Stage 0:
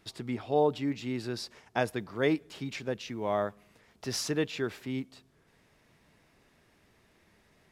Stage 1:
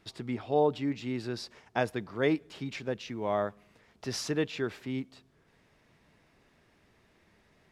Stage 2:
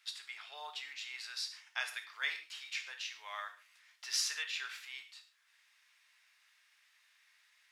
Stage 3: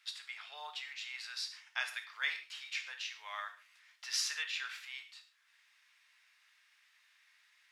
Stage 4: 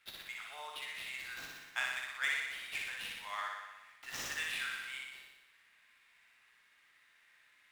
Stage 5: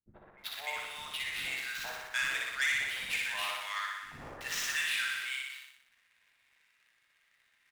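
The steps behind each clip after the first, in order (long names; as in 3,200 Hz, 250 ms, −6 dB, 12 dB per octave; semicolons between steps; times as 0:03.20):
high-shelf EQ 8,600 Hz −9.5 dB
Bessel high-pass filter 2,100 Hz, order 4; reverb whose tail is shaped and stops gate 170 ms falling, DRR 5 dB; level +3 dB
high-pass filter 740 Hz 6 dB per octave; high-shelf EQ 5,000 Hz −6 dB; level +2.5 dB
running median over 9 samples; flutter between parallel walls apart 10.4 metres, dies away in 1.1 s; level +1 dB
leveller curve on the samples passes 2; three-band delay without the direct sound lows, mids, highs 80/380 ms, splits 300/1,100 Hz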